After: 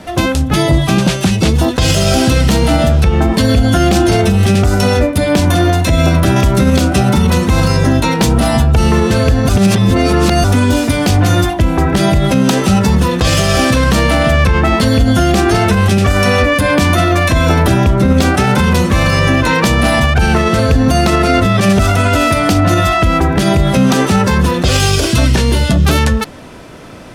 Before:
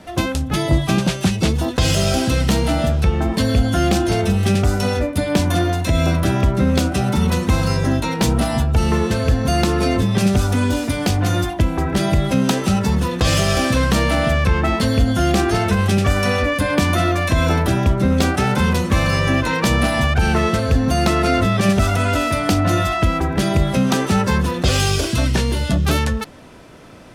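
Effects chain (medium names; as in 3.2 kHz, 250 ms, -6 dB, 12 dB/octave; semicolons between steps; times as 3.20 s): 6.36–6.77 s: treble shelf 3.5 kHz +10.5 dB; 9.49–10.44 s: reverse; loudness maximiser +9.5 dB; trim -1 dB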